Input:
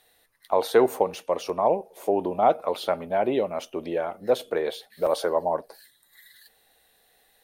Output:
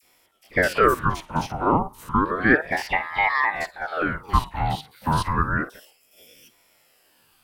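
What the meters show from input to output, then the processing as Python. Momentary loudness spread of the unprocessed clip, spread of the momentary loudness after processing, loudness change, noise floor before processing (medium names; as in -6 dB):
8 LU, 9 LU, +2.5 dB, -64 dBFS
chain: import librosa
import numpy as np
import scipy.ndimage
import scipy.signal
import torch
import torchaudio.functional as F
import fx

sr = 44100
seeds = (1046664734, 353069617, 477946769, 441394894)

y = fx.spec_steps(x, sr, hold_ms=50)
y = fx.dispersion(y, sr, late='lows', ms=61.0, hz=1500.0)
y = fx.ring_lfo(y, sr, carrier_hz=900.0, swing_pct=65, hz=0.31)
y = y * 10.0 ** (6.5 / 20.0)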